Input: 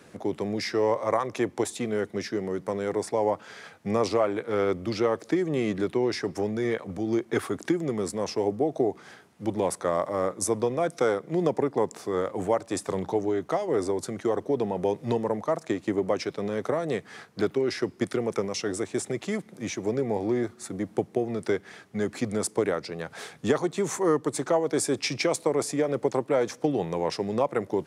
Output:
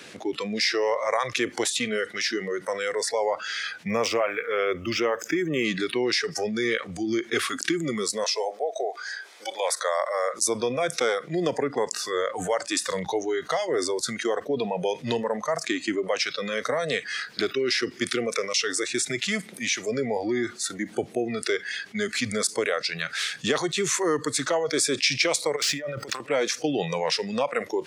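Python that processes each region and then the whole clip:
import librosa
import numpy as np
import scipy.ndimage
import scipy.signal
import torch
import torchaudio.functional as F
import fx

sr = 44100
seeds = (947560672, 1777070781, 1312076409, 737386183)

y = fx.chain(x, sr, fx.peak_eq(hz=4200.0, db=-14.0, octaves=0.34),
    fx.resample_linear(factor=2), at=(3.87, 5.65))
y = fx.chain(y, sr, fx.highpass(hz=440.0, slope=24),
    fx.notch(hz=2800.0, q=7.4), at=(8.24, 10.34))
y = fx.chain(y, sr, fx.median_filter(points=5),
    fx.over_compress(threshold_db=-34.0, ratio=-1.0), at=(25.56, 26.2))
y = fx.weighting(y, sr, curve='D')
y = fx.noise_reduce_blind(y, sr, reduce_db=17)
y = fx.env_flatten(y, sr, amount_pct=50)
y = F.gain(torch.from_numpy(y), -3.5).numpy()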